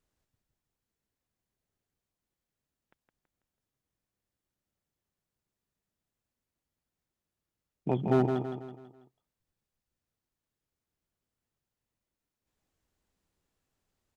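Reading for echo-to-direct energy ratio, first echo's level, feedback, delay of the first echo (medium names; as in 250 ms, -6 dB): -5.0 dB, -6.0 dB, 44%, 164 ms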